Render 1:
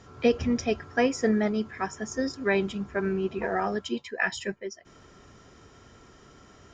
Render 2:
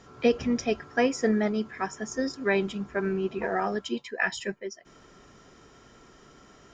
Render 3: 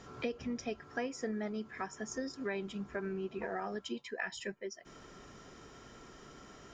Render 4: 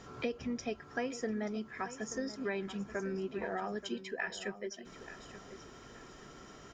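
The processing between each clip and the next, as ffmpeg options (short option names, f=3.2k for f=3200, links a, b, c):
-af "equalizer=f=85:t=o:w=0.6:g=-12"
-af "acompressor=threshold=-39dB:ratio=3"
-af "aecho=1:1:881|1762|2643:0.211|0.0676|0.0216,volume=1dB"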